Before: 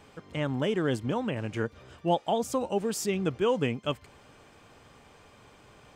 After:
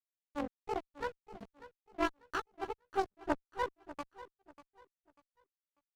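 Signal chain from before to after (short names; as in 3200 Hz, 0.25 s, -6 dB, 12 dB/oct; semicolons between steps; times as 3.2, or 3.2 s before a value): delay-line pitch shifter +11.5 st; LPF 1200 Hz 6 dB/oct; in parallel at -1 dB: compressor 6:1, threshold -39 dBFS, peak gain reduction 13.5 dB; on the sum: grains 0.192 s, grains 3.1/s, spray 0.154 s, pitch spread up and down by 0 st; backlash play -29 dBFS; added harmonics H 2 -6 dB, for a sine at -17.5 dBFS; on a send: feedback echo 0.593 s, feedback 29%, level -16 dB; on the sum: gain -3 dB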